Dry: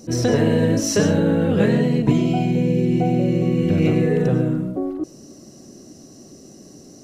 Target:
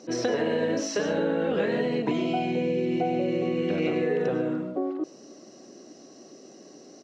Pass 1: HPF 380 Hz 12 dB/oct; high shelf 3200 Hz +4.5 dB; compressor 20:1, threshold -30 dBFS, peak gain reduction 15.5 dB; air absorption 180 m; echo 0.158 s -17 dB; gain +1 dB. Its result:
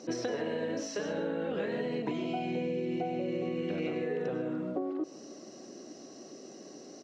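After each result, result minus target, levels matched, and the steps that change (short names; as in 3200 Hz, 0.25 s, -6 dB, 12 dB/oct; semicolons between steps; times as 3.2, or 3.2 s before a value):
compressor: peak gain reduction +8 dB; echo-to-direct +11.5 dB
change: compressor 20:1, threshold -21.5 dBFS, peak gain reduction 7.5 dB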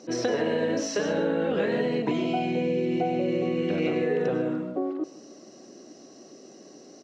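echo-to-direct +11.5 dB
change: echo 0.158 s -28.5 dB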